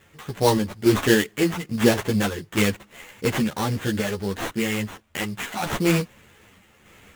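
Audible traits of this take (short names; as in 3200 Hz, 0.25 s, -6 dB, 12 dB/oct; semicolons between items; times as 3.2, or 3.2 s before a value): aliases and images of a low sample rate 4900 Hz, jitter 20%; random-step tremolo 3.5 Hz; a shimmering, thickened sound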